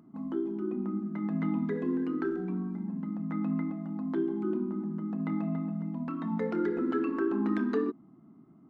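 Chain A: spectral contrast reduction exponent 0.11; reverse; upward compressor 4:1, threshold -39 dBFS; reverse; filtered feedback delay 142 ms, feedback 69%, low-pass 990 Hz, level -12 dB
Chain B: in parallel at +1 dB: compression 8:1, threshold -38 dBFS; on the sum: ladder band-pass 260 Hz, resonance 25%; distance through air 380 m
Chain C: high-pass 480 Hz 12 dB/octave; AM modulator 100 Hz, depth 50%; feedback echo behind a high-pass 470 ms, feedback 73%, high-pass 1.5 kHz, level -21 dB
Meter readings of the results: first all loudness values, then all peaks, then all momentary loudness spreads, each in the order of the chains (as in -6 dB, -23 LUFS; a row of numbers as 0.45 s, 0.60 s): -29.5 LUFS, -40.5 LUFS, -43.0 LUFS; -8.0 dBFS, -27.5 dBFS, -23.5 dBFS; 6 LU, 4 LU, 11 LU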